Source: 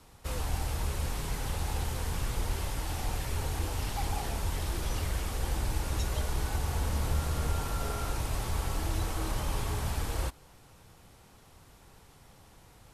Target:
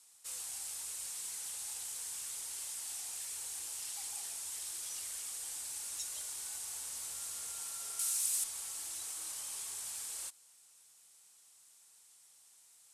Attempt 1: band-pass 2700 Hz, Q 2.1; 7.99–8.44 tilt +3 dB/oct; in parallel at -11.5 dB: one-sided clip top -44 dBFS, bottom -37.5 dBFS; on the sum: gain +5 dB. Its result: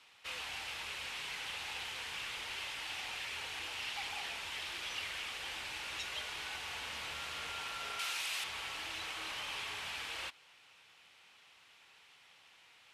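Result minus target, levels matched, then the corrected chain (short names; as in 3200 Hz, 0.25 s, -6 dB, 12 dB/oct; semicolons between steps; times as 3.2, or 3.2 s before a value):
2000 Hz band +17.0 dB
band-pass 8500 Hz, Q 2.1; 7.99–8.44 tilt +3 dB/oct; in parallel at -11.5 dB: one-sided clip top -44 dBFS, bottom -37.5 dBFS; on the sum: gain +5 dB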